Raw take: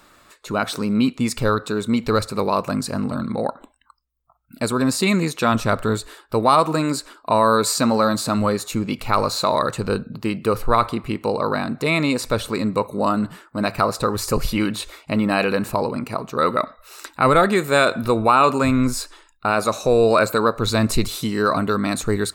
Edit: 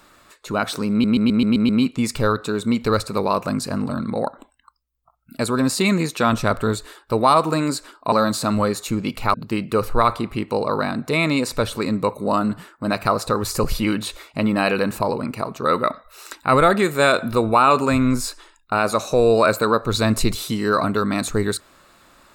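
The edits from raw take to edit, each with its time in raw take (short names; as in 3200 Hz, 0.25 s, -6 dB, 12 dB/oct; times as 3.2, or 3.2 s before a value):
0.91 stutter 0.13 s, 7 plays
7.34–7.96 cut
9.18–10.07 cut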